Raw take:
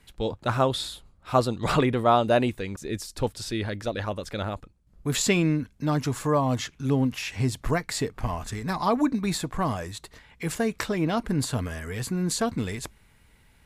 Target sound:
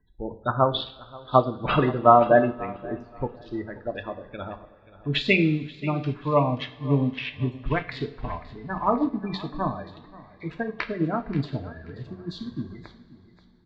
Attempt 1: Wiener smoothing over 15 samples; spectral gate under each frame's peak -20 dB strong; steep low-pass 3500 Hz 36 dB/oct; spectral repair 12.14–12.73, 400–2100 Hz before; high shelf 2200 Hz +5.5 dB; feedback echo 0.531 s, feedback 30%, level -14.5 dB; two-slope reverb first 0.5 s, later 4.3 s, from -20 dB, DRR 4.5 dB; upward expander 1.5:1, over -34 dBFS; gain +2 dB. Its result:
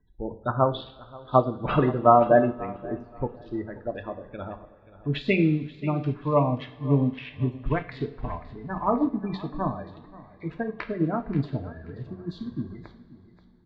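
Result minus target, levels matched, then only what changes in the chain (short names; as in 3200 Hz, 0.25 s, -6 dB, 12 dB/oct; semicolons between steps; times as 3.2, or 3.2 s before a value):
4000 Hz band -8.0 dB
change: high shelf 2200 Hz +16.5 dB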